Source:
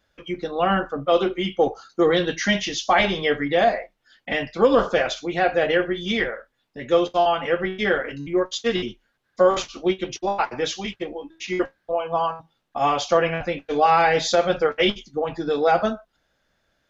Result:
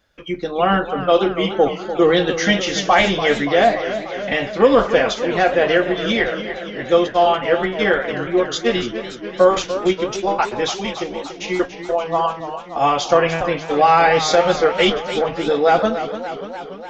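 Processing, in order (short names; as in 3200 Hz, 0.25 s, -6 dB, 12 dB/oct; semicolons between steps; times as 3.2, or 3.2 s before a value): warbling echo 0.291 s, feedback 68%, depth 130 cents, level -11 dB; gain +4 dB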